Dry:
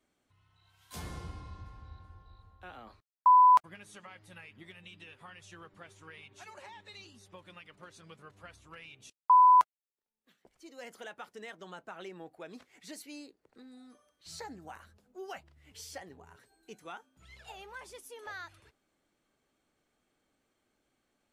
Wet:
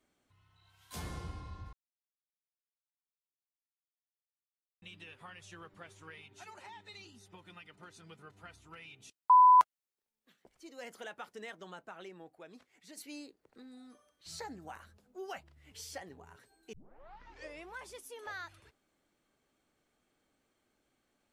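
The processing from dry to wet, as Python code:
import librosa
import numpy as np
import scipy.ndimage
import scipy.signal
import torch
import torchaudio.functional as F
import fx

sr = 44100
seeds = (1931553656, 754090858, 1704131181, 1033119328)

y = fx.notch_comb(x, sr, f0_hz=560.0, at=(6.14, 9.59))
y = fx.edit(y, sr, fx.silence(start_s=1.73, length_s=3.09),
    fx.fade_out_to(start_s=11.47, length_s=1.5, curve='qua', floor_db=-7.5),
    fx.tape_start(start_s=16.73, length_s=1.05), tone=tone)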